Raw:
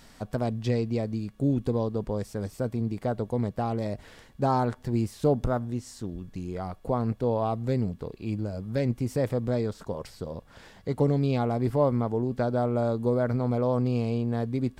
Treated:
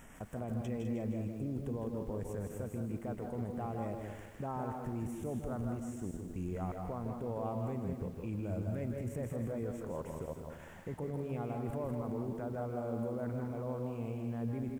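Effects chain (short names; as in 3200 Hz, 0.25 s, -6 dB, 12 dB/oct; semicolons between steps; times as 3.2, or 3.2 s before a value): level quantiser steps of 18 dB; limiter -30.5 dBFS, peak gain reduction 6.5 dB; Butterworth band-stop 4400 Hz, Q 1.2; loudspeakers at several distances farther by 57 m -7 dB, 70 m -9 dB; lo-fi delay 0.154 s, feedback 55%, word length 10-bit, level -8 dB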